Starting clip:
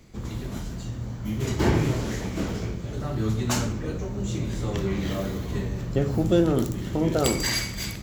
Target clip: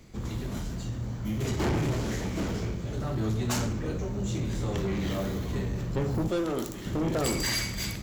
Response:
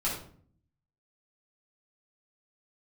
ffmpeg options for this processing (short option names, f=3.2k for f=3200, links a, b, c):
-filter_complex "[0:a]asettb=1/sr,asplit=3[a][b][c];[a]atrim=end=6.284[d];[b]atrim=start=6.28:end=6.86,asetpts=PTS-STARTPTS,afade=t=in:d=0.004:c=qsin,afade=t=out:st=0.576:d=0.004:c=qsin,equalizer=f=91:w=0.41:g=-14.5[e];[c]atrim=start=6.856[f];[d][e]acrossfade=d=0.004:c1=hsin:c2=qsin[g];[g][f]acrossfade=d=0.004:c1=qsin:c2=hsin,asoftclip=type=tanh:threshold=-23dB"